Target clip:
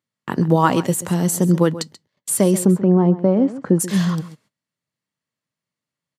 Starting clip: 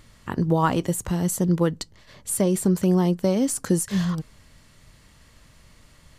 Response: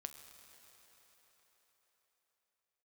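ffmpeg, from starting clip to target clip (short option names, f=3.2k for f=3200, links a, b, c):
-filter_complex "[0:a]highpass=f=130:w=0.5412,highpass=f=130:w=1.3066,agate=range=-36dB:threshold=-44dB:ratio=16:detection=peak,asplit=3[a][b][c];[a]afade=t=out:st=2.64:d=0.02[d];[b]lowpass=1.2k,afade=t=in:st=2.64:d=0.02,afade=t=out:st=3.79:d=0.02[e];[c]afade=t=in:st=3.79:d=0.02[f];[d][e][f]amix=inputs=3:normalize=0,asplit=2[g][h];[h]adelay=134.1,volume=-15dB,highshelf=f=4k:g=-3.02[i];[g][i]amix=inputs=2:normalize=0,volume=5.5dB"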